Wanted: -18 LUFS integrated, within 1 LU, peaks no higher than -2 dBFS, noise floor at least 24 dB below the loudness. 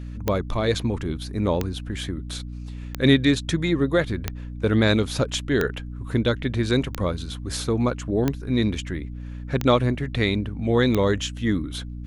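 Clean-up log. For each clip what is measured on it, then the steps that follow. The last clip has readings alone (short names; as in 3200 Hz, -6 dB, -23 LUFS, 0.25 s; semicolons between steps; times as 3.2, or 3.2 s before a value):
clicks 9; hum 60 Hz; harmonics up to 300 Hz; hum level -31 dBFS; loudness -24.0 LUFS; peak -5.5 dBFS; loudness target -18.0 LUFS
-> de-click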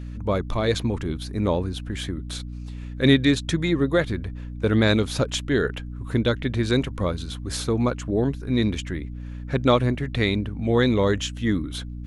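clicks 0; hum 60 Hz; harmonics up to 300 Hz; hum level -31 dBFS
-> de-hum 60 Hz, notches 5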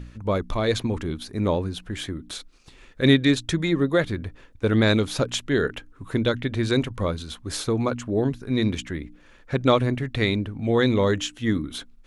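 hum none; loudness -24.0 LUFS; peak -5.5 dBFS; loudness target -18.0 LUFS
-> gain +6 dB; limiter -2 dBFS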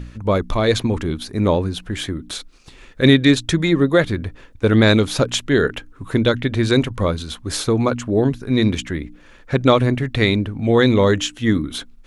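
loudness -18.5 LUFS; peak -2.0 dBFS; noise floor -46 dBFS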